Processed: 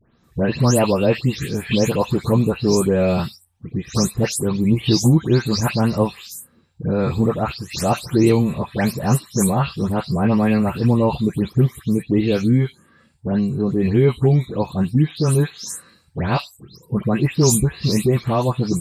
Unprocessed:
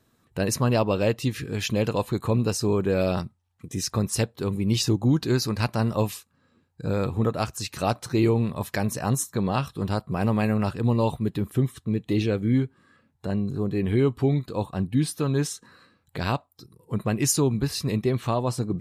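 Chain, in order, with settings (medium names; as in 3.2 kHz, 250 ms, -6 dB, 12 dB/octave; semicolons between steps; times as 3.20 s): delay that grows with frequency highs late, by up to 236 ms; bass shelf 180 Hz +6 dB; trim +5.5 dB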